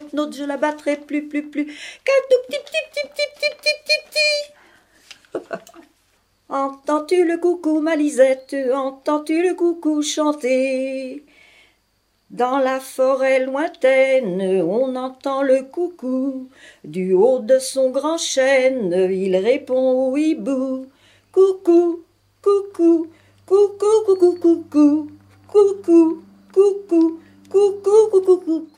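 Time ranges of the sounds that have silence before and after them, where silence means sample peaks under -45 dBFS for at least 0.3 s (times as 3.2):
6.49–11.66
12.3–22.03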